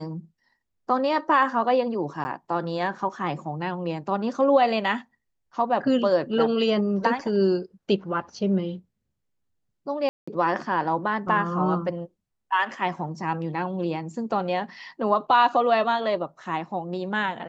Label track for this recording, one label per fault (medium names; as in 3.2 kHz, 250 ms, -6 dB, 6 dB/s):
2.240000	2.250000	dropout 10 ms
10.090000	10.280000	dropout 185 ms